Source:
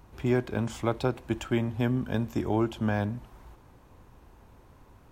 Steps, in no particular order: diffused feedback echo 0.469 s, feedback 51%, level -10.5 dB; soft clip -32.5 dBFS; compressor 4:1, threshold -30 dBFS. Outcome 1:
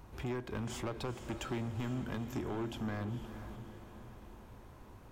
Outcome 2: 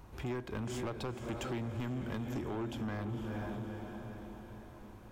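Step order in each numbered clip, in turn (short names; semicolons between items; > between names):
compressor > soft clip > diffused feedback echo; diffused feedback echo > compressor > soft clip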